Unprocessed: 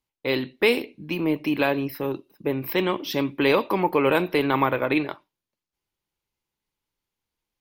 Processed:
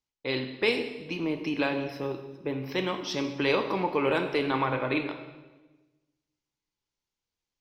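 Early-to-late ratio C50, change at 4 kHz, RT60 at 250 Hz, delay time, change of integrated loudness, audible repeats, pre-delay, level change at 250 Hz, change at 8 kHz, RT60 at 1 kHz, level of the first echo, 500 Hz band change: 8.5 dB, -3.0 dB, 1.4 s, no echo, -5.5 dB, no echo, 11 ms, -6.0 dB, no reading, 1.1 s, no echo, -5.5 dB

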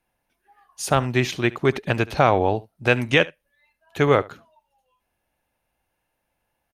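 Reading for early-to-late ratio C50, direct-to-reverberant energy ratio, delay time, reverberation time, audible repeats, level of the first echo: no reverb, no reverb, 72 ms, no reverb, 1, -21.0 dB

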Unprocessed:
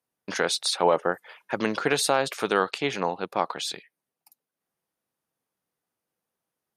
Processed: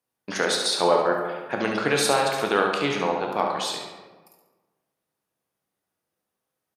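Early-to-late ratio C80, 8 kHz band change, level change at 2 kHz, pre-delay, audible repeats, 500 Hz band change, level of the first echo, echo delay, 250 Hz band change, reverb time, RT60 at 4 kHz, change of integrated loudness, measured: 6.0 dB, +1.5 dB, +2.5 dB, 11 ms, 1, +2.5 dB, -7.5 dB, 70 ms, +2.5 dB, 1.3 s, 0.75 s, +2.5 dB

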